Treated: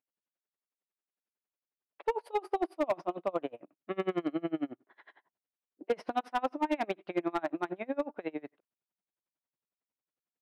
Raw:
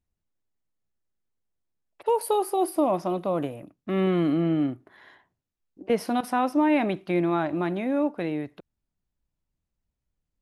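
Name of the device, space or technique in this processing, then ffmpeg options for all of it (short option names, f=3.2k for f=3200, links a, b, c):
helicopter radio: -af "highpass=370,lowpass=2.9k,aeval=exprs='val(0)*pow(10,-30*(0.5-0.5*cos(2*PI*11*n/s))/20)':c=same,asoftclip=type=hard:threshold=-23dB,volume=1dB"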